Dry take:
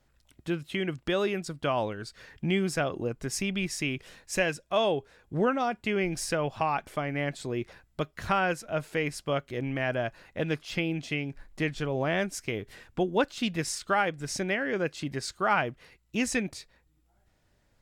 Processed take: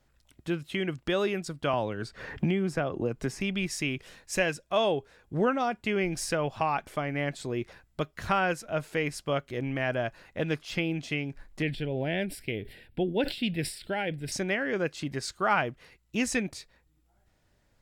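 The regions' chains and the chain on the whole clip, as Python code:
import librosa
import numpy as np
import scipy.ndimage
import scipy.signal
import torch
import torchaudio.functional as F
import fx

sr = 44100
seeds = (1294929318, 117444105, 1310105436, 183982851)

y = fx.chain(x, sr, fx.high_shelf(hz=2500.0, db=-10.5),
    fx.band_squash(depth_pct=100), at=(1.73, 3.41))
y = fx.chain(y, sr, fx.fixed_phaser(hz=2800.0, stages=4),
    fx.sustainer(db_per_s=110.0), at=(11.62, 14.32))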